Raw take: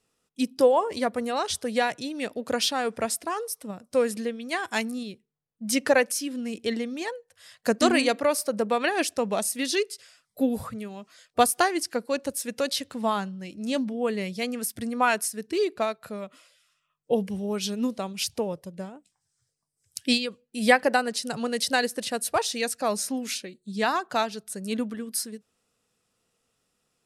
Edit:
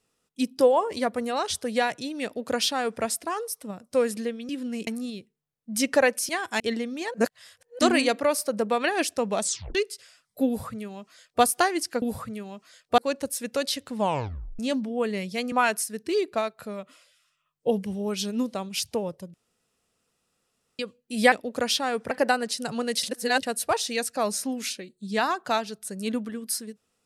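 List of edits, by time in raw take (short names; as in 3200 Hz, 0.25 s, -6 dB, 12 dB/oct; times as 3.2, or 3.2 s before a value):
2.24–3.03 copy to 20.76
4.49–4.8 swap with 6.22–6.6
7.14–7.79 reverse
9.42 tape stop 0.33 s
10.47–11.43 copy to 12.02
13.02 tape stop 0.61 s
14.56–14.96 cut
18.78–20.23 room tone
21.68–22.08 reverse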